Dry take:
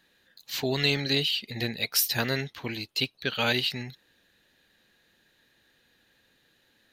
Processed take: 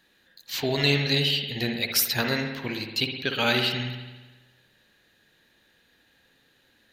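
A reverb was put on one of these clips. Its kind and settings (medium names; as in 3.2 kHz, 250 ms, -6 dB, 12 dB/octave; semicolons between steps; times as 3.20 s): spring tank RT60 1.2 s, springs 56 ms, chirp 30 ms, DRR 4 dB; trim +1.5 dB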